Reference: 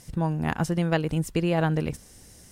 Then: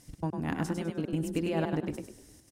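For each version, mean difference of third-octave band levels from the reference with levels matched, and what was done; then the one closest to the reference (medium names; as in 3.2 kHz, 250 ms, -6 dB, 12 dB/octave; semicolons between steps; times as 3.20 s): 4.5 dB: peaking EQ 290 Hz +13 dB 0.25 oct; de-hum 85.77 Hz, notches 19; trance gate "xx.x.xxxxx" 200 bpm -60 dB; frequency-shifting echo 101 ms, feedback 33%, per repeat +33 Hz, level -5.5 dB; trim -7.5 dB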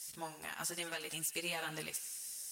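12.5 dB: differentiator; peak limiter -32 dBFS, peak gain reduction 9.5 dB; on a send: thinning echo 91 ms, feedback 70%, high-pass 870 Hz, level -14.5 dB; on the sum: three-phase chorus; trim +10 dB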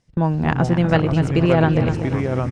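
9.0 dB: distance through air 120 m; feedback delay 245 ms, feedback 47%, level -10 dB; ever faster or slower copies 332 ms, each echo -4 st, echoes 3, each echo -6 dB; gate with hold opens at -26 dBFS; trim +7 dB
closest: first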